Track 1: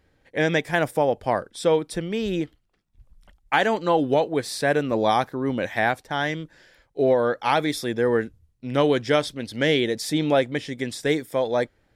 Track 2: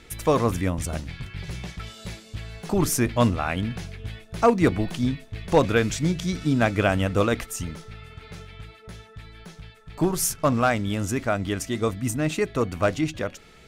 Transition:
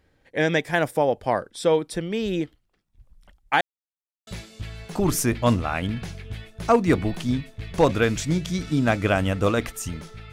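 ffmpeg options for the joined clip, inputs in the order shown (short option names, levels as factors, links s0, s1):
-filter_complex "[0:a]apad=whole_dur=10.32,atrim=end=10.32,asplit=2[s0][s1];[s0]atrim=end=3.61,asetpts=PTS-STARTPTS,afade=t=out:st=3.606:d=0.004:c=hsin[s2];[s1]atrim=start=3.61:end=4.27,asetpts=PTS-STARTPTS,volume=0[s3];[1:a]atrim=start=2.01:end=8.06,asetpts=PTS-STARTPTS,afade=t=in:d=0.004:c=hsin[s4];[s2][s3][s4]concat=n=3:v=0:a=1"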